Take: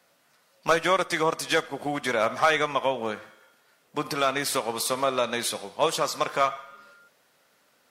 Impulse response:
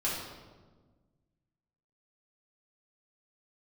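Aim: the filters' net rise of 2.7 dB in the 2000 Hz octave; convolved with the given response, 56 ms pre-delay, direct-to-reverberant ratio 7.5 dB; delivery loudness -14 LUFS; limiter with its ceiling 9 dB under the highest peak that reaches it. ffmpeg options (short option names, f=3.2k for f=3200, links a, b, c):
-filter_complex "[0:a]equalizer=f=2k:t=o:g=3.5,alimiter=limit=-17dB:level=0:latency=1,asplit=2[a][b];[1:a]atrim=start_sample=2205,adelay=56[c];[b][c]afir=irnorm=-1:irlink=0,volume=-14.5dB[d];[a][d]amix=inputs=2:normalize=0,volume=15dB"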